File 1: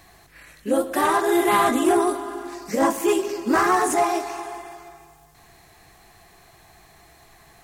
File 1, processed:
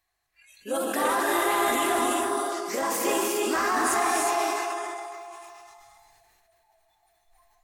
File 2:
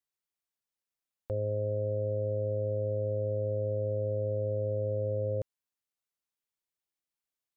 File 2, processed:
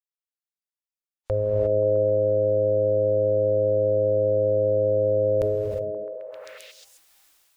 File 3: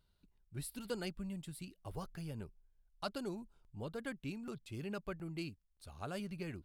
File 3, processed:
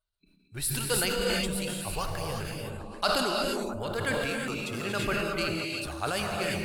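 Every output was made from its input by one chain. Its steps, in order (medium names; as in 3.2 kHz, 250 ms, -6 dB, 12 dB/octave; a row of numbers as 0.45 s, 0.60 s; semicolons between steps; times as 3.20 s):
spectral noise reduction 26 dB; peaking EQ 190 Hz -14.5 dB 2.6 oct; peak limiter -20 dBFS; on a send: repeats whose band climbs or falls 132 ms, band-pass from 170 Hz, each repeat 0.7 oct, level -4 dB; on the sum: gated-style reverb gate 380 ms rising, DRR 0 dB; decay stretcher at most 21 dB/s; peak normalisation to -12 dBFS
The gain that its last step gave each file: +1.0 dB, +15.5 dB, +15.5 dB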